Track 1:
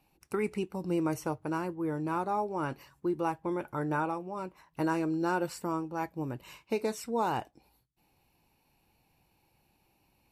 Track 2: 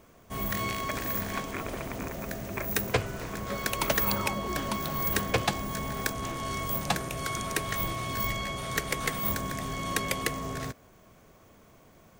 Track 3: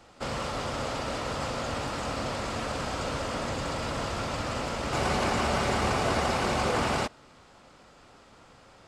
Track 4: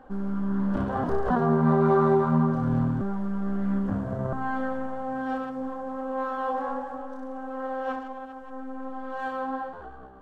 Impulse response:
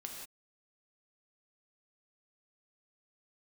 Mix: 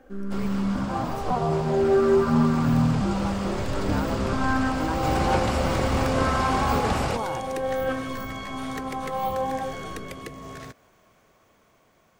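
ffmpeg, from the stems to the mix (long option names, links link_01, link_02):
-filter_complex "[0:a]volume=-8dB[link_01];[1:a]acrossover=split=500[link_02][link_03];[link_03]acompressor=threshold=-40dB:ratio=6[link_04];[link_02][link_04]amix=inputs=2:normalize=0,asplit=2[link_05][link_06];[link_06]highpass=frequency=720:poles=1,volume=6dB,asoftclip=type=tanh:threshold=-22.5dB[link_07];[link_05][link_07]amix=inputs=2:normalize=0,lowpass=frequency=5300:poles=1,volume=-6dB,volume=-4dB,afade=type=in:start_time=5.04:duration=0.27:silence=0.473151[link_08];[2:a]lowshelf=frequency=160:gain=10.5,adelay=100,volume=-7.5dB[link_09];[3:a]asplit=2[link_10][link_11];[link_11]afreqshift=-0.51[link_12];[link_10][link_12]amix=inputs=2:normalize=1,volume=1dB[link_13];[link_01][link_08][link_09][link_13]amix=inputs=4:normalize=0,dynaudnorm=framelen=570:gausssize=9:maxgain=6dB"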